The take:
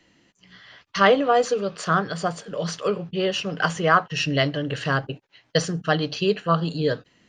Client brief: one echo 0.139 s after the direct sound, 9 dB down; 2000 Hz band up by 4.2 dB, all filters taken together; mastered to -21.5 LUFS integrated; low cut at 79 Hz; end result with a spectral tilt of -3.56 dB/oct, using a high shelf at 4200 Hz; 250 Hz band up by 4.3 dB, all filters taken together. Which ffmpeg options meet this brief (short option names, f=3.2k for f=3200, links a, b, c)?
-af "highpass=79,equalizer=f=250:t=o:g=6.5,equalizer=f=2k:t=o:g=5,highshelf=f=4.2k:g=3,aecho=1:1:139:0.355,volume=-1.5dB"